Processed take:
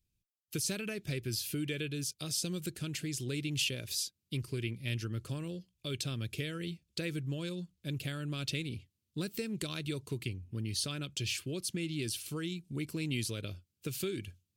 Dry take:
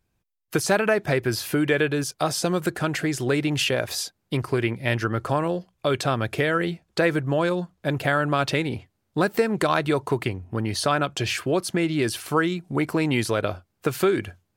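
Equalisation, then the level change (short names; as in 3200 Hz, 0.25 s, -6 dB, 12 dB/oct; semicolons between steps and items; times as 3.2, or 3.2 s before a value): passive tone stack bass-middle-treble 6-0-2; low shelf 240 Hz -4.5 dB; band shelf 1200 Hz -11 dB; +9.0 dB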